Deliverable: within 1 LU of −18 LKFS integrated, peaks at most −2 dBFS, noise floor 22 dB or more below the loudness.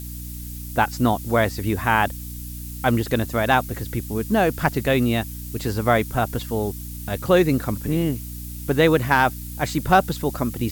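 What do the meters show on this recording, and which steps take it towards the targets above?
mains hum 60 Hz; hum harmonics up to 300 Hz; level of the hum −32 dBFS; background noise floor −34 dBFS; target noise floor −44 dBFS; integrated loudness −22.0 LKFS; sample peak −4.0 dBFS; target loudness −18.0 LKFS
→ mains-hum notches 60/120/180/240/300 Hz
broadband denoise 10 dB, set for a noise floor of −34 dBFS
level +4 dB
brickwall limiter −2 dBFS

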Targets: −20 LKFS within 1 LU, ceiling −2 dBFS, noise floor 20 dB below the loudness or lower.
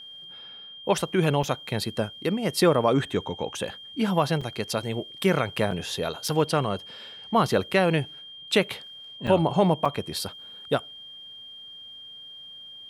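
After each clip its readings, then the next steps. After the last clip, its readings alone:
number of dropouts 6; longest dropout 4.8 ms; interfering tone 3,200 Hz; level of the tone −41 dBFS; integrated loudness −26.0 LKFS; sample peak −7.0 dBFS; target loudness −20.0 LKFS
→ repair the gap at 0:01.43/0:04.41/0:05.71/0:06.28/0:09.27/0:09.85, 4.8 ms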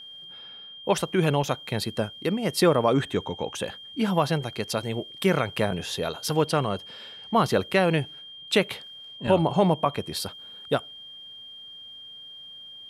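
number of dropouts 0; interfering tone 3,200 Hz; level of the tone −41 dBFS
→ notch filter 3,200 Hz, Q 30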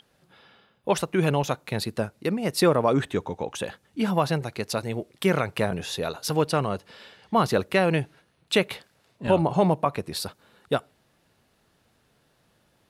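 interfering tone none found; integrated loudness −26.0 LKFS; sample peak −7.0 dBFS; target loudness −20.0 LKFS
→ level +6 dB
brickwall limiter −2 dBFS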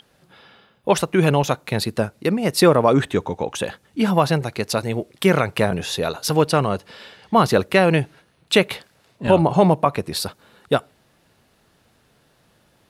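integrated loudness −20.0 LKFS; sample peak −2.0 dBFS; background noise floor −61 dBFS

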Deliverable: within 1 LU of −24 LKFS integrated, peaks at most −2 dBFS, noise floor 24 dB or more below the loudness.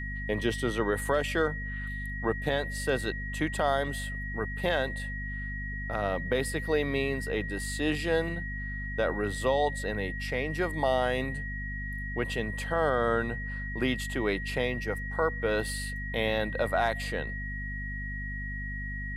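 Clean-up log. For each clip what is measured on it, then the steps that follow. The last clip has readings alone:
mains hum 50 Hz; hum harmonics up to 250 Hz; level of the hum −35 dBFS; interfering tone 1,900 Hz; level of the tone −37 dBFS; integrated loudness −30.5 LKFS; sample peak −14.0 dBFS; target loudness −24.0 LKFS
→ mains-hum notches 50/100/150/200/250 Hz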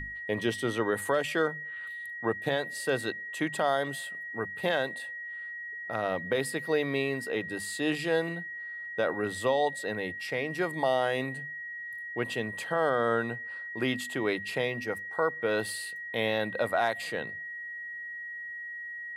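mains hum none found; interfering tone 1,900 Hz; level of the tone −37 dBFS
→ notch filter 1,900 Hz, Q 30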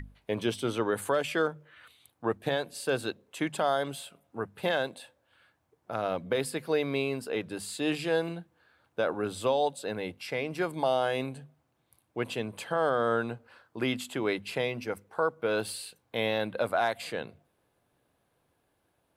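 interfering tone none found; integrated loudness −31.5 LKFS; sample peak −15.5 dBFS; target loudness −24.0 LKFS
→ level +7.5 dB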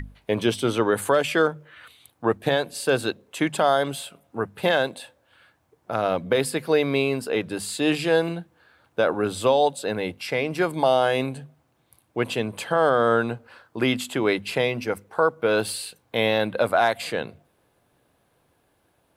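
integrated loudness −24.0 LKFS; sample peak −8.0 dBFS; background noise floor −67 dBFS

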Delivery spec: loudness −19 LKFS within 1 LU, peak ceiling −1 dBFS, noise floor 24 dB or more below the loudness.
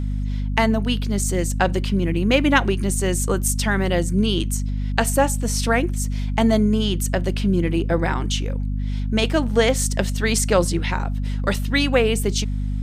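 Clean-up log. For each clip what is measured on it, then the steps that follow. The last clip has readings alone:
mains hum 50 Hz; hum harmonics up to 250 Hz; level of the hum −21 dBFS; integrated loudness −21.0 LKFS; sample peak −2.0 dBFS; target loudness −19.0 LKFS
→ hum removal 50 Hz, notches 5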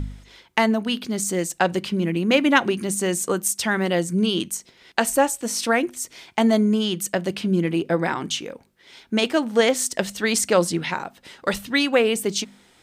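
mains hum none found; integrated loudness −22.0 LKFS; sample peak −2.5 dBFS; target loudness −19.0 LKFS
→ level +3 dB
brickwall limiter −1 dBFS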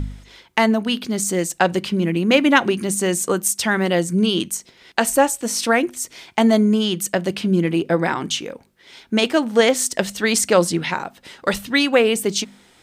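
integrated loudness −19.0 LKFS; sample peak −1.0 dBFS; background noise floor −53 dBFS

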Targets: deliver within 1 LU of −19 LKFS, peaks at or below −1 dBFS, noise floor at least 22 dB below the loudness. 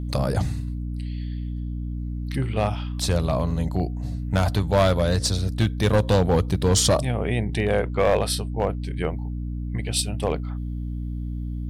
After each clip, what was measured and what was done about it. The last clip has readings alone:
share of clipped samples 0.6%; peaks flattened at −12.5 dBFS; mains hum 60 Hz; hum harmonics up to 300 Hz; level of the hum −27 dBFS; integrated loudness −24.5 LKFS; sample peak −12.5 dBFS; target loudness −19.0 LKFS
→ clipped peaks rebuilt −12.5 dBFS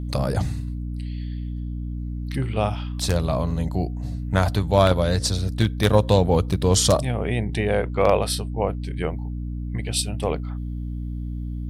share of clipped samples 0.0%; mains hum 60 Hz; hum harmonics up to 300 Hz; level of the hum −26 dBFS
→ hum removal 60 Hz, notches 5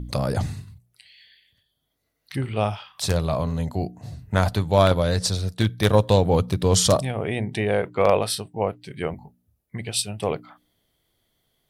mains hum none found; integrated loudness −23.0 LKFS; sample peak −3.0 dBFS; target loudness −19.0 LKFS
→ level +4 dB
brickwall limiter −1 dBFS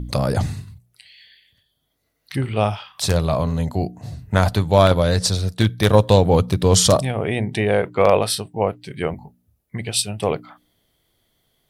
integrated loudness −19.5 LKFS; sample peak −1.0 dBFS; background noise floor −71 dBFS

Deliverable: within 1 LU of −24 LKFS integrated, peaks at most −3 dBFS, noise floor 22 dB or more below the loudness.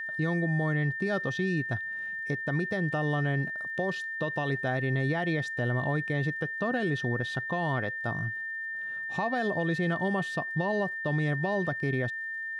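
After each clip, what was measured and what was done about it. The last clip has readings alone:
crackle rate 54 per second; interfering tone 1,800 Hz; level of the tone −33 dBFS; integrated loudness −30.0 LKFS; sample peak −18.0 dBFS; target loudness −24.0 LKFS
→ click removal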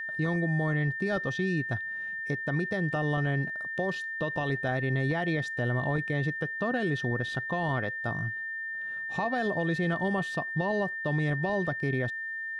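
crackle rate 0.16 per second; interfering tone 1,800 Hz; level of the tone −33 dBFS
→ notch filter 1,800 Hz, Q 30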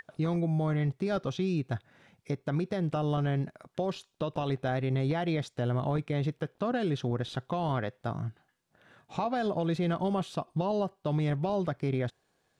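interfering tone none found; integrated loudness −31.5 LKFS; sample peak −20.0 dBFS; target loudness −24.0 LKFS
→ level +7.5 dB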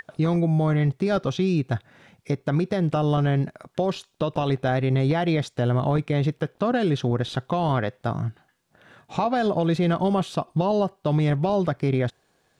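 integrated loudness −24.0 LKFS; sample peak −12.5 dBFS; background noise floor −67 dBFS

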